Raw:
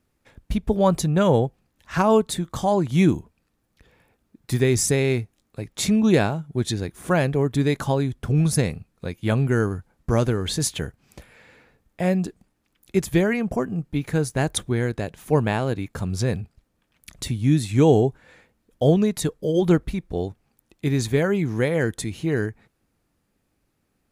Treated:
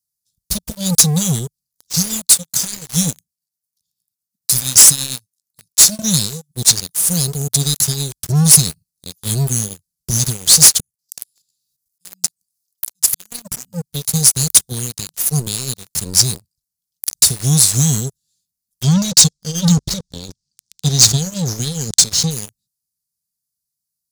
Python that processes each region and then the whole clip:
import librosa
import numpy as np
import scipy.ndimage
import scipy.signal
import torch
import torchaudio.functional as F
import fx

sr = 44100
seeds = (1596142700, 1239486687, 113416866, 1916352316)

y = fx.chain(x, sr, fx.highpass(hz=150.0, slope=6),
    fx.tremolo_shape(shape='triangle', hz=8.8, depth_pct=45), at=(2.27, 5.99))
y = fx.chain(y, sr, fx.auto_swell(attack_ms=447.0),
    fx.high_shelf(hz=2400.0, db=10.0),
    fx.level_steps(step_db=12), at=(10.8, 13.32))
y = fx.chain(y, sr, fx.lowpass(hz=6900.0, slope=24),
    fx.transient(attack_db=5, sustain_db=10), at=(18.83, 22.31))
y = scipy.signal.sosfilt(scipy.signal.ellip(3, 1.0, 40, [170.0, 4700.0], 'bandstop', fs=sr, output='sos'), y)
y = fx.tilt_eq(y, sr, slope=4.0)
y = fx.leveller(y, sr, passes=5)
y = F.gain(torch.from_numpy(y), -1.0).numpy()